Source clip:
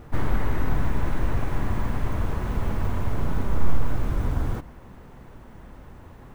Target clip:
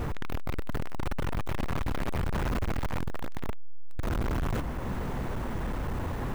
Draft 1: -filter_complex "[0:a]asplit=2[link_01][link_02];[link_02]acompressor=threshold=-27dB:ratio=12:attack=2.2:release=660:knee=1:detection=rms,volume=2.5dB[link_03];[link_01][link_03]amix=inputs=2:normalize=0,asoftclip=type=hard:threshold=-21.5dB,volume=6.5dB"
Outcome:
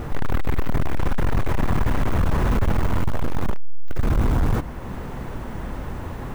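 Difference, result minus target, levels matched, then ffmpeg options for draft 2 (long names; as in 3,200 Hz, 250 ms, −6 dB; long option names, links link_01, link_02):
hard clipping: distortion −4 dB
-filter_complex "[0:a]asplit=2[link_01][link_02];[link_02]acompressor=threshold=-27dB:ratio=12:attack=2.2:release=660:knee=1:detection=rms,volume=2.5dB[link_03];[link_01][link_03]amix=inputs=2:normalize=0,asoftclip=type=hard:threshold=-33.5dB,volume=6.5dB"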